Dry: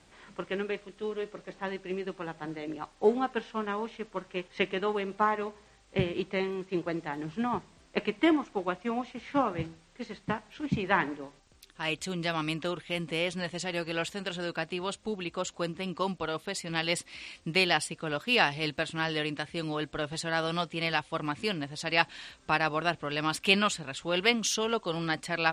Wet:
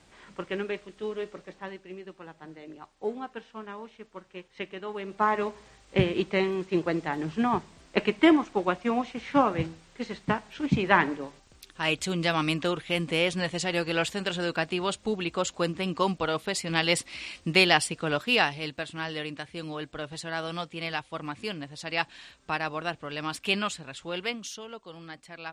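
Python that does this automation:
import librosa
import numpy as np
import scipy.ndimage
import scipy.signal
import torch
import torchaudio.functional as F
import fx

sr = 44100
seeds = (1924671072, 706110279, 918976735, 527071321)

y = fx.gain(x, sr, db=fx.line((1.33, 1.0), (1.9, -7.5), (4.84, -7.5), (5.39, 5.0), (18.15, 5.0), (18.66, -3.0), (24.04, -3.0), (24.67, -12.5)))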